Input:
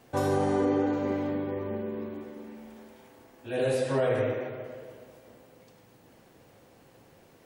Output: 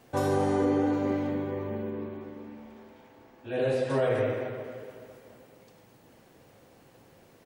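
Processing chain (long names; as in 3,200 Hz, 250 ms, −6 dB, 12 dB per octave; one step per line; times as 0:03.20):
0:01.90–0:03.90: parametric band 11,000 Hz −13 dB 1.4 octaves
repeating echo 215 ms, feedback 60%, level −16 dB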